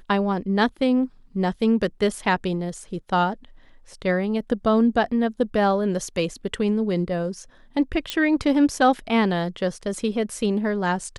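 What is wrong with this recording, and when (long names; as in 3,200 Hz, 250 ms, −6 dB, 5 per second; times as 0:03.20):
0:08.10: click −10 dBFS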